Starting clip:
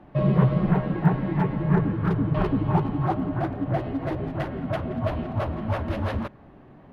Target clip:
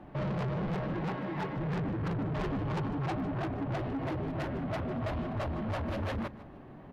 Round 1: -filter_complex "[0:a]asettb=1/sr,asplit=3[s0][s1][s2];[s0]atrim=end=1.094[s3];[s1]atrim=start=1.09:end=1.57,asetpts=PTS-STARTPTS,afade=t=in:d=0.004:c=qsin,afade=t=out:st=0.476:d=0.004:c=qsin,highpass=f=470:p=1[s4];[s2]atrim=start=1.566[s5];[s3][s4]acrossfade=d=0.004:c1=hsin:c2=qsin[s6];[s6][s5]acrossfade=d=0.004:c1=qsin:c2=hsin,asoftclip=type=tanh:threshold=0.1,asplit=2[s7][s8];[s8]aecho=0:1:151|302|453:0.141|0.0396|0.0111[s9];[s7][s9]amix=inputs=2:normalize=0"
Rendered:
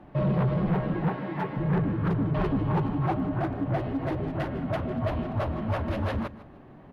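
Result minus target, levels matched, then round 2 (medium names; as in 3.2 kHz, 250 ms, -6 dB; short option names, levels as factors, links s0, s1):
saturation: distortion -7 dB
-filter_complex "[0:a]asettb=1/sr,asplit=3[s0][s1][s2];[s0]atrim=end=1.094[s3];[s1]atrim=start=1.09:end=1.57,asetpts=PTS-STARTPTS,afade=t=in:d=0.004:c=qsin,afade=t=out:st=0.476:d=0.004:c=qsin,highpass=f=470:p=1[s4];[s2]atrim=start=1.566[s5];[s3][s4]acrossfade=d=0.004:c1=hsin:c2=qsin[s6];[s6][s5]acrossfade=d=0.004:c1=qsin:c2=hsin,asoftclip=type=tanh:threshold=0.0282,asplit=2[s7][s8];[s8]aecho=0:1:151|302|453:0.141|0.0396|0.0111[s9];[s7][s9]amix=inputs=2:normalize=0"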